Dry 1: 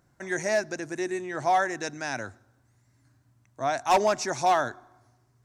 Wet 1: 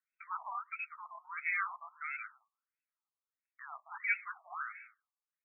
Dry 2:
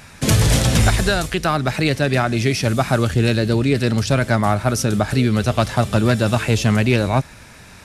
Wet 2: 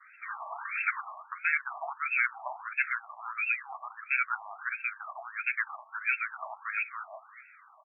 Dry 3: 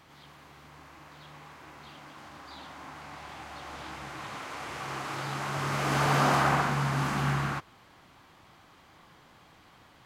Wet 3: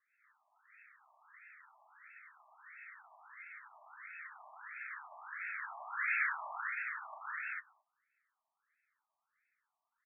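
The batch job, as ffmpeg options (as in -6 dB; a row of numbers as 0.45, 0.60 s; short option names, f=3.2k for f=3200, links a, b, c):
-filter_complex "[0:a]agate=range=-16dB:threshold=-51dB:ratio=16:detection=peak,afftfilt=real='re*lt(hypot(re,im),1)':imag='im*lt(hypot(re,im),1)':win_size=1024:overlap=0.75,lowshelf=f=79:g=5,flanger=delay=2.3:depth=6.3:regen=-47:speed=1.5:shape=triangular,asplit=2[a][b];[b]adelay=220,highpass=300,lowpass=3.4k,asoftclip=type=hard:threshold=-18dB,volume=-22dB[c];[a][c]amix=inputs=2:normalize=0,lowpass=f=2.5k:t=q:w=0.5098,lowpass=f=2.5k:t=q:w=0.6013,lowpass=f=2.5k:t=q:w=0.9,lowpass=f=2.5k:t=q:w=2.563,afreqshift=-2900,afftfilt=real='re*between(b*sr/1024,840*pow(1900/840,0.5+0.5*sin(2*PI*1.5*pts/sr))/1.41,840*pow(1900/840,0.5+0.5*sin(2*PI*1.5*pts/sr))*1.41)':imag='im*between(b*sr/1024,840*pow(1900/840,0.5+0.5*sin(2*PI*1.5*pts/sr))/1.41,840*pow(1900/840,0.5+0.5*sin(2*PI*1.5*pts/sr))*1.41)':win_size=1024:overlap=0.75,volume=-2.5dB"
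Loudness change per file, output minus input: -11.5, -14.5, -10.5 LU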